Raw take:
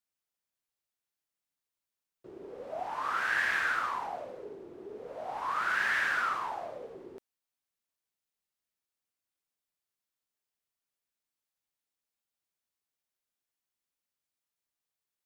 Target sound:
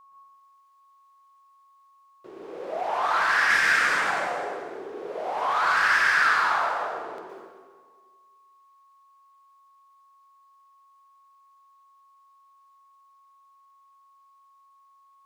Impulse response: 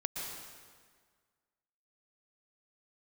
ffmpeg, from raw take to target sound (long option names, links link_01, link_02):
-filter_complex "[0:a]asettb=1/sr,asplit=3[link_01][link_02][link_03];[link_01]atrim=end=3.504[link_04];[link_02]atrim=start=3.5:end=4.1,asetpts=PTS-STARTPTS,afade=type=in:duration=0.004:curve=qsin,afade=type=out:start_time=0.596:duration=0.004:curve=qsin,equalizer=frequency=125:width_type=o:width=1:gain=12,equalizer=frequency=250:width_type=o:width=1:gain=7,equalizer=frequency=500:width_type=o:width=1:gain=5,equalizer=frequency=1000:width_type=o:width=1:gain=-11,equalizer=frequency=2000:width_type=o:width=1:gain=7,equalizer=frequency=8000:width_type=o:width=1:gain=10[link_05];[link_03]atrim=start=4.096[link_06];[link_04][link_05]acrossfade=duration=0.004:curve1=hsin:curve2=qsin[link_07];[link_07][link_06]acrossfade=duration=0.004:curve1=qsin:curve2=hsin,asettb=1/sr,asplit=3[link_08][link_09][link_10];[link_08]atrim=end=6.704[link_11];[link_09]atrim=start=6.7:end=7.15,asetpts=PTS-STARTPTS,afade=type=in:duration=0.004:curve=qsin,afade=type=out:start_time=0.446:duration=0.004:curve=qsin,acompressor=threshold=-45dB:ratio=6[link_12];[link_10]atrim=start=7.146[link_13];[link_11][link_12]acrossfade=duration=0.004:curve1=hsin:curve2=qsin[link_14];[link_14][link_13]acrossfade=duration=0.004:curve1=qsin:curve2=hsin,asplit=2[link_15][link_16];[link_16]highpass=frequency=720:poles=1,volume=22dB,asoftclip=type=tanh:threshold=-9.5dB[link_17];[link_15][link_17]amix=inputs=2:normalize=0,lowpass=frequency=6300:poles=1,volume=-6dB,aeval=exprs='val(0)+0.00501*sin(2*PI*1100*n/s)':channel_layout=same[link_18];[1:a]atrim=start_sample=2205[link_19];[link_18][link_19]afir=irnorm=-1:irlink=0,volume=-5dB"